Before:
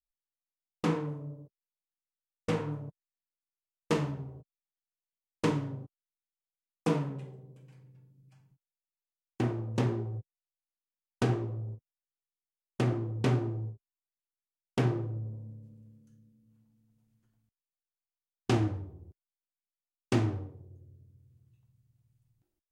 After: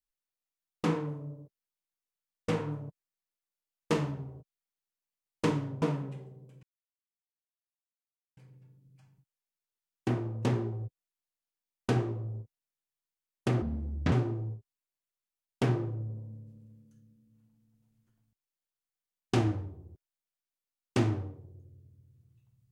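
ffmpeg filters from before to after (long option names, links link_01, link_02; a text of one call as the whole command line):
ffmpeg -i in.wav -filter_complex "[0:a]asplit=5[link_01][link_02][link_03][link_04][link_05];[link_01]atrim=end=5.822[link_06];[link_02]atrim=start=6.888:end=7.7,asetpts=PTS-STARTPTS,afade=type=out:start_time=0.808:duration=0.004:curve=hsin,apad=pad_dur=1.74[link_07];[link_03]atrim=start=7.7:end=12.954,asetpts=PTS-STARTPTS,afade=type=in:duration=0.004:curve=hsin[link_08];[link_04]atrim=start=12.95:end=13.28,asetpts=PTS-STARTPTS,asetrate=29106,aresample=44100[link_09];[link_05]atrim=start=13.276[link_10];[link_07][link_08]concat=n=2:v=0:a=1[link_11];[link_06][link_11]acrossfade=duration=0.004:curve1=hsin:curve2=hsin[link_12];[link_12][link_09]acrossfade=duration=0.004:curve1=hsin:curve2=hsin[link_13];[link_13][link_10]acrossfade=duration=0.004:curve1=hsin:curve2=hsin" out.wav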